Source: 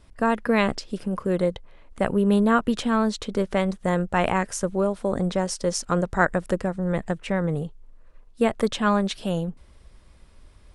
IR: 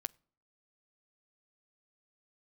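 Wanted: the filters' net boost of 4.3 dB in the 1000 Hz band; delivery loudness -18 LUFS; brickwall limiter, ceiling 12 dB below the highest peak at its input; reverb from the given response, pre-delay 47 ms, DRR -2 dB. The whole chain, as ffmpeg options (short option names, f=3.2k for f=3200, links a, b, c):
-filter_complex "[0:a]equalizer=f=1k:t=o:g=5.5,alimiter=limit=-14dB:level=0:latency=1,asplit=2[a][b];[1:a]atrim=start_sample=2205,adelay=47[c];[b][c]afir=irnorm=-1:irlink=0,volume=4dB[d];[a][d]amix=inputs=2:normalize=0,volume=4.5dB"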